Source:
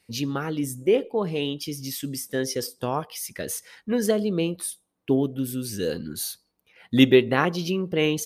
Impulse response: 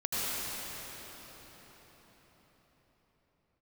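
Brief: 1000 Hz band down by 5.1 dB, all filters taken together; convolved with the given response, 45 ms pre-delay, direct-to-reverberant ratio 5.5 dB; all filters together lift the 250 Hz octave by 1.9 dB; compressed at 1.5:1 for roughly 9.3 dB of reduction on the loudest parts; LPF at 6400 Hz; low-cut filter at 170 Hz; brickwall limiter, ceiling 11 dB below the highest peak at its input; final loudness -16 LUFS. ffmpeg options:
-filter_complex "[0:a]highpass=170,lowpass=6.4k,equalizer=f=250:t=o:g=3.5,equalizer=f=1k:t=o:g=-7,acompressor=threshold=-36dB:ratio=1.5,alimiter=limit=-22.5dB:level=0:latency=1,asplit=2[a][b];[1:a]atrim=start_sample=2205,adelay=45[c];[b][c]afir=irnorm=-1:irlink=0,volume=-15dB[d];[a][d]amix=inputs=2:normalize=0,volume=17dB"

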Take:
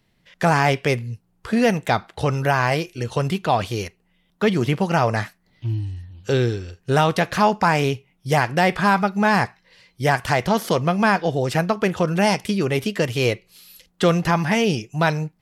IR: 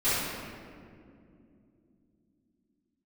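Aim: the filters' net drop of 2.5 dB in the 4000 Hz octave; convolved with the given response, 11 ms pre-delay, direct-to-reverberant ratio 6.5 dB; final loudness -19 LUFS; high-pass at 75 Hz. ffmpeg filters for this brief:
-filter_complex "[0:a]highpass=75,equalizer=f=4k:t=o:g=-3.5,asplit=2[a][b];[1:a]atrim=start_sample=2205,adelay=11[c];[b][c]afir=irnorm=-1:irlink=0,volume=-20dB[d];[a][d]amix=inputs=2:normalize=0,volume=1dB"

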